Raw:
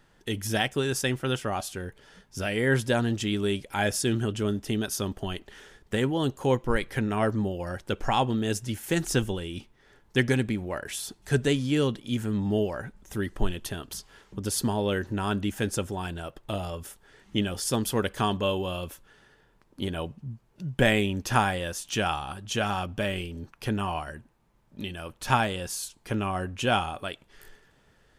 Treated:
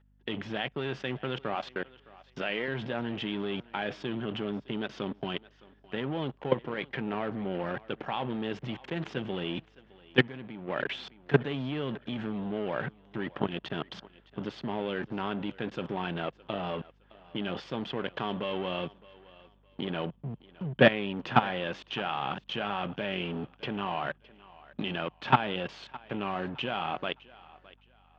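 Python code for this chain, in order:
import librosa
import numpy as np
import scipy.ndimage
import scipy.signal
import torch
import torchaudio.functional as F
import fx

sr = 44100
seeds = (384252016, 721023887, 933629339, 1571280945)

p1 = fx.low_shelf(x, sr, hz=270.0, db=-11.0, at=(1.55, 2.68))
p2 = fx.level_steps(p1, sr, step_db=20)
p3 = fx.leveller(p2, sr, passes=3)
p4 = scipy.signal.sosfilt(scipy.signal.ellip(3, 1.0, 50, [140.0, 3200.0], 'bandpass', fs=sr, output='sos'), p3)
p5 = p4 + fx.echo_thinned(p4, sr, ms=613, feedback_pct=30, hz=320.0, wet_db=-20.0, dry=0)
p6 = fx.add_hum(p5, sr, base_hz=50, snr_db=31)
p7 = fx.upward_expand(p6, sr, threshold_db=-30.0, expansion=1.5, at=(10.18, 10.67), fade=0.02)
y = p7 * librosa.db_to_amplitude(-2.0)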